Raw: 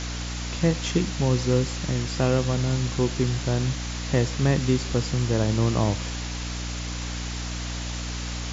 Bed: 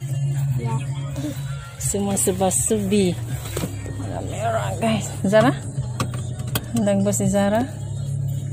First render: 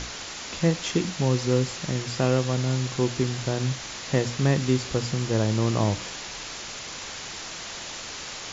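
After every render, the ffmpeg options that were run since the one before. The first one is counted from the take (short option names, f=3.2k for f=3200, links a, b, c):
-af "bandreject=f=60:t=h:w=6,bandreject=f=120:t=h:w=6,bandreject=f=180:t=h:w=6,bandreject=f=240:t=h:w=6,bandreject=f=300:t=h:w=6"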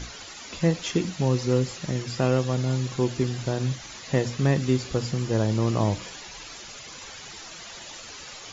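-af "afftdn=nr=10:nf=-37"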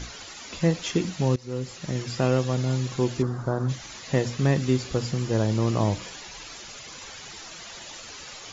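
-filter_complex "[0:a]asplit=3[a][b][c];[a]afade=t=out:st=3.21:d=0.02[d];[b]highshelf=f=1.8k:t=q:w=3:g=-12,afade=t=in:st=3.21:d=0.02,afade=t=out:st=3.68:d=0.02[e];[c]afade=t=in:st=3.68:d=0.02[f];[d][e][f]amix=inputs=3:normalize=0,asplit=2[g][h];[g]atrim=end=1.36,asetpts=PTS-STARTPTS,afade=t=out:st=1.356:d=0.004:c=hsin:silence=0.1[i];[h]atrim=start=1.36,asetpts=PTS-STARTPTS,afade=t=in:d=0.65:silence=0.1[j];[i][j]concat=n=2:v=0:a=1"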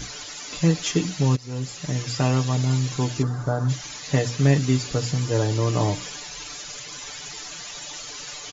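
-af "highshelf=f=6.5k:g=10,aecho=1:1:6.8:0.74"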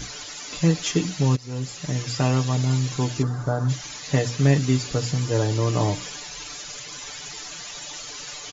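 -af anull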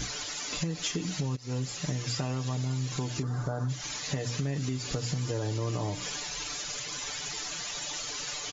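-af "alimiter=limit=-17.5dB:level=0:latency=1:release=172,acompressor=threshold=-28dB:ratio=6"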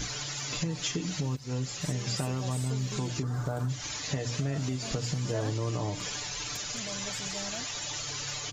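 -filter_complex "[1:a]volume=-23dB[a];[0:a][a]amix=inputs=2:normalize=0"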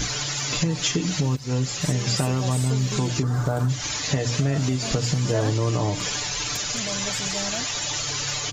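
-af "volume=8.5dB"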